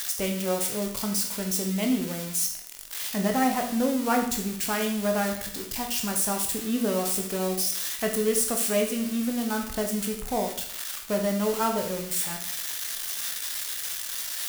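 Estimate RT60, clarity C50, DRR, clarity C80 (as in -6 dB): 0.65 s, 7.0 dB, 2.0 dB, 10.5 dB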